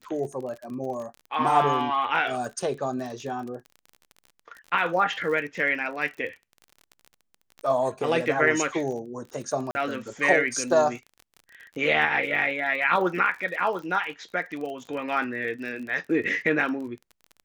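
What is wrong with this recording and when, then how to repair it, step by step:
crackle 37 per s -34 dBFS
9.71–9.75 s: dropout 40 ms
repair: de-click; interpolate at 9.71 s, 40 ms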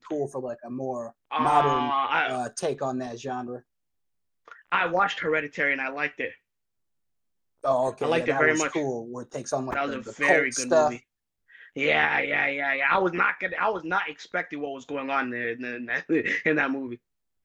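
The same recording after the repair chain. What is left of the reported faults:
nothing left

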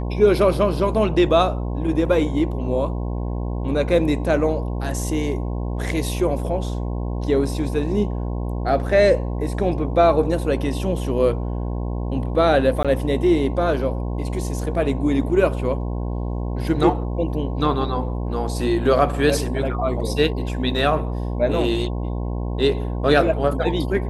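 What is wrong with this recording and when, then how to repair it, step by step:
buzz 60 Hz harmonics 18 -25 dBFS
12.83–12.85 s: dropout 16 ms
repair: de-hum 60 Hz, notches 18; interpolate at 12.83 s, 16 ms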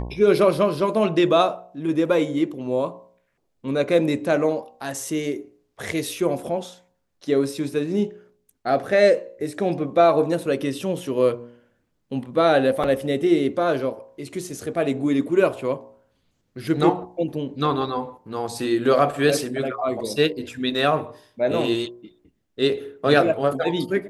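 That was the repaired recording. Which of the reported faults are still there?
nothing left

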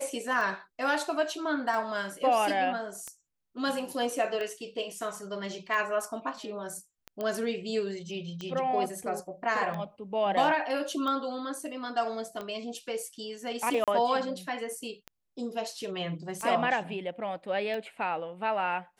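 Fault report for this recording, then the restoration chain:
tick 45 rpm
7.21 s: pop -21 dBFS
13.84–13.88 s: dropout 37 ms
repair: de-click; interpolate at 13.84 s, 37 ms

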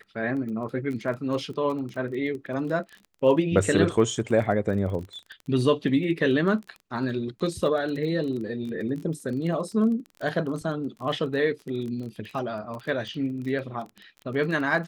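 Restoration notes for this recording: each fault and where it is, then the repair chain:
crackle 22 per s -33 dBFS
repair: de-click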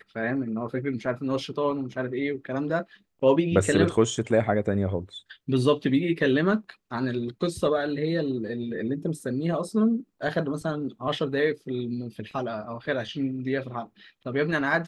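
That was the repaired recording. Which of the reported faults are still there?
nothing left

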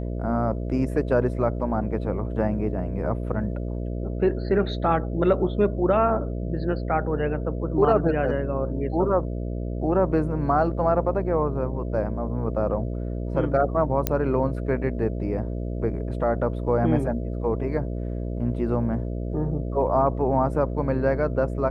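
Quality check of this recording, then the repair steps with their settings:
buzz 60 Hz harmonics 11 -29 dBFS
14.07 s: pop -6 dBFS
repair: de-click; de-hum 60 Hz, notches 11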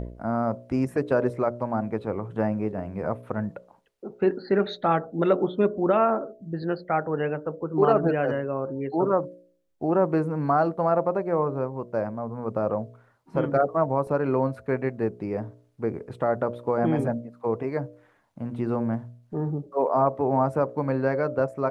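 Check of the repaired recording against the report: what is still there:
nothing left

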